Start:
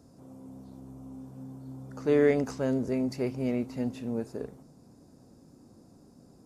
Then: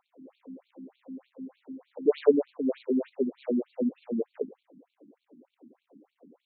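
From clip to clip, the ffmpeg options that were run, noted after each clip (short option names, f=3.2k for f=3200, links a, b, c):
-af "equalizer=f=125:t=o:w=1:g=-6,equalizer=f=250:t=o:w=1:g=5,equalizer=f=500:t=o:w=1:g=9,equalizer=f=1k:t=o:w=1:g=3,equalizer=f=2k:t=o:w=1:g=-12,equalizer=f=4k:t=o:w=1:g=-8,acrusher=bits=5:mode=log:mix=0:aa=0.000001,afftfilt=real='re*between(b*sr/1024,220*pow(3200/220,0.5+0.5*sin(2*PI*3.3*pts/sr))/1.41,220*pow(3200/220,0.5+0.5*sin(2*PI*3.3*pts/sr))*1.41)':imag='im*between(b*sr/1024,220*pow(3200/220,0.5+0.5*sin(2*PI*3.3*pts/sr))/1.41,220*pow(3200/220,0.5+0.5*sin(2*PI*3.3*pts/sr))*1.41)':win_size=1024:overlap=0.75"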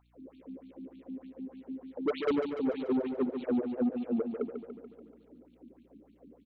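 -af "asoftclip=type=tanh:threshold=-24dB,aeval=exprs='val(0)+0.000447*(sin(2*PI*60*n/s)+sin(2*PI*2*60*n/s)/2+sin(2*PI*3*60*n/s)/3+sin(2*PI*4*60*n/s)/4+sin(2*PI*5*60*n/s)/5)':c=same,aecho=1:1:144|288|432|576|720|864|1008|1152:0.422|0.253|0.152|0.0911|0.0547|0.0328|0.0197|0.0118"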